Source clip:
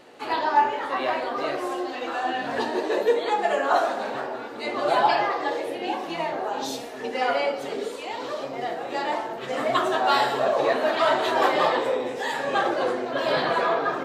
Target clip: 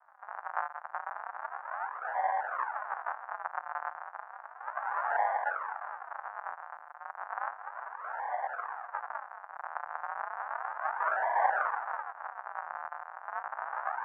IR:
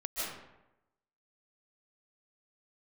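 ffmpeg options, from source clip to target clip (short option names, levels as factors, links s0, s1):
-af "acompressor=threshold=0.0501:ratio=1.5,aresample=8000,acrusher=samples=28:mix=1:aa=0.000001:lfo=1:lforange=44.8:lforate=0.33,aresample=44100,asuperpass=centerf=1100:order=8:qfactor=1.2,volume=1.78"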